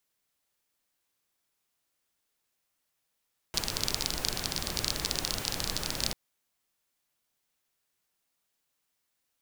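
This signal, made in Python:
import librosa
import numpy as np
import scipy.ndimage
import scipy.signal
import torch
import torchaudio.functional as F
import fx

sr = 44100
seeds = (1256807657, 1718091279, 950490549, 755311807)

y = fx.rain(sr, seeds[0], length_s=2.59, drops_per_s=25.0, hz=4600.0, bed_db=-1)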